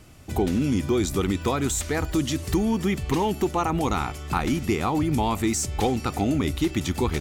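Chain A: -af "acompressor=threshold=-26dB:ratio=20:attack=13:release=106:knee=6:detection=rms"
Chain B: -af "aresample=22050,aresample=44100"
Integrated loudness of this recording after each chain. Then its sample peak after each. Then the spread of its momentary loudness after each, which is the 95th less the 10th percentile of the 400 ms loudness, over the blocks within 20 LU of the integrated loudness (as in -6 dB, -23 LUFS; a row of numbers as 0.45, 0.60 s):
-31.0, -25.0 LUFS; -15.5, -12.0 dBFS; 2, 3 LU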